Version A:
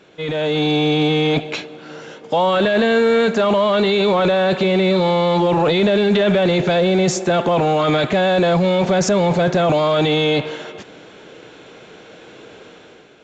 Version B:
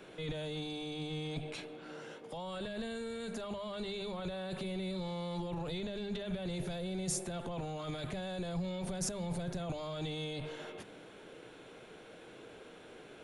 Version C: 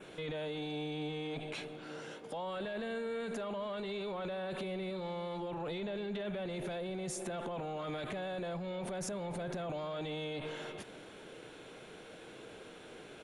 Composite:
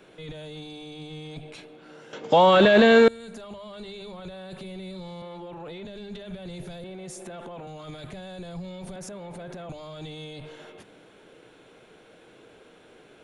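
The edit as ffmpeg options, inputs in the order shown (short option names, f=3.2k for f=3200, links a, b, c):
-filter_complex "[2:a]asplit=3[a][b][c];[1:a]asplit=5[d][e][f][g][h];[d]atrim=end=2.132[i];[0:a]atrim=start=2.128:end=3.082[j];[e]atrim=start=3.078:end=5.222[k];[a]atrim=start=5.218:end=5.852[l];[f]atrim=start=5.848:end=6.842[m];[b]atrim=start=6.838:end=7.672[n];[g]atrim=start=7.668:end=8.962[o];[c]atrim=start=8.958:end=9.692[p];[h]atrim=start=9.688[q];[i][j]acrossfade=d=0.004:c1=hsin:c2=hsin[r];[r][k]acrossfade=d=0.004:c1=hsin:c2=hsin[s];[s][l]acrossfade=d=0.004:c1=hsin:c2=hsin[t];[t][m]acrossfade=d=0.004:c1=hsin:c2=hsin[u];[u][n]acrossfade=d=0.004:c1=hsin:c2=hsin[v];[v][o]acrossfade=d=0.004:c1=hsin:c2=hsin[w];[w][p]acrossfade=d=0.004:c1=hsin:c2=hsin[x];[x][q]acrossfade=d=0.004:c1=hsin:c2=hsin"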